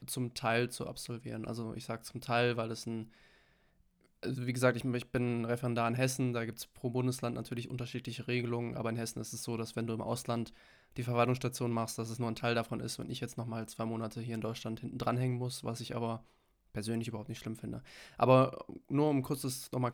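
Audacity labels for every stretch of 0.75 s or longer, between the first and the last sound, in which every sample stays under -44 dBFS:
3.040000	4.230000	silence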